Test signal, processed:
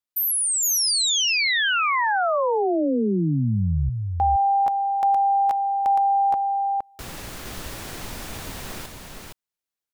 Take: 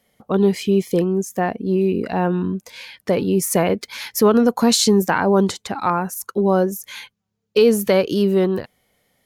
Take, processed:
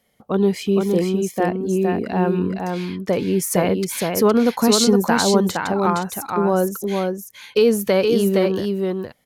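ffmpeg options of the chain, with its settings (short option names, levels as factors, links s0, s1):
-af "aecho=1:1:465:0.631,volume=0.841"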